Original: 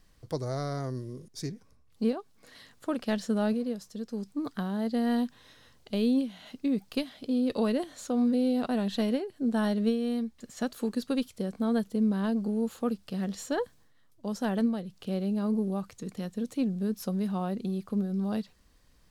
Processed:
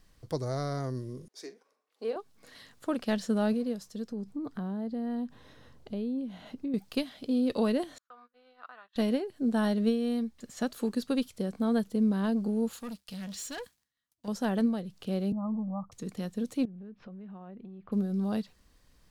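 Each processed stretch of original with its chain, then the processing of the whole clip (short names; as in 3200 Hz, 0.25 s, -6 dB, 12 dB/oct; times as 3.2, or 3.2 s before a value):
1.28–2.16 HPF 390 Hz 24 dB/oct + high shelf 4200 Hz -10 dB + doubler 44 ms -14 dB
4.09–6.74 compressor 3:1, threshold -41 dBFS + tilt shelf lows +6.5 dB, about 1400 Hz
7.98–8.96 ladder band-pass 1400 Hz, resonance 60% + gate -58 dBFS, range -28 dB
12.73–14.28 passive tone stack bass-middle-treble 5-5-5 + comb 4.2 ms, depth 33% + sample leveller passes 3
15.32–15.92 steep low-pass 1300 Hz 96 dB/oct + fixed phaser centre 950 Hz, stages 4
16.65–17.92 LPF 2700 Hz 24 dB/oct + compressor 8:1, threshold -43 dBFS
whole clip: dry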